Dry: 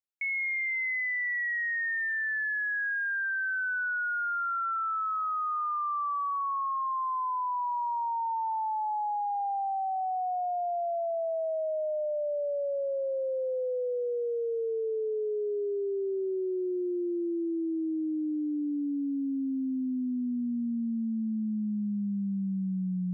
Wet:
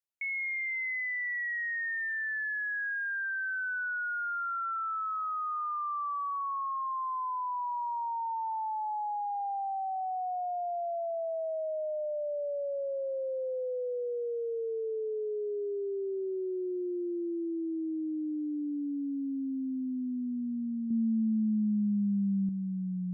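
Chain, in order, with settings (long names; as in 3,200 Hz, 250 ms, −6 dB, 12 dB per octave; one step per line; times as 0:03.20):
0:20.90–0:22.49: comb filter 4.5 ms, depth 94%
level −3 dB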